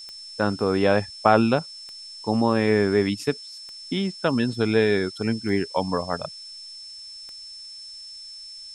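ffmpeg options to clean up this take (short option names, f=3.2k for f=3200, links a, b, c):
-af "adeclick=t=4,bandreject=f=5.3k:w=30,afftdn=nr=28:nf=-41"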